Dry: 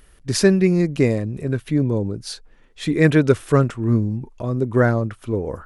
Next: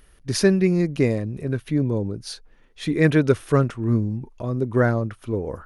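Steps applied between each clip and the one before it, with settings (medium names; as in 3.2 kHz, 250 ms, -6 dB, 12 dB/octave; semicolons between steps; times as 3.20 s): band-stop 7.6 kHz, Q 6.9; trim -2.5 dB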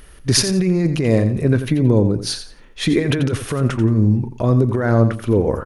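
compressor with a negative ratio -23 dBFS, ratio -1; feedback delay 87 ms, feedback 24%, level -10.5 dB; trim +7.5 dB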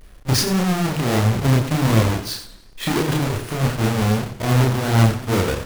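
square wave that keeps the level; chorus voices 2, 1.5 Hz, delay 30 ms, depth 3 ms; modulated delay 97 ms, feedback 49%, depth 158 cents, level -16 dB; trim -4 dB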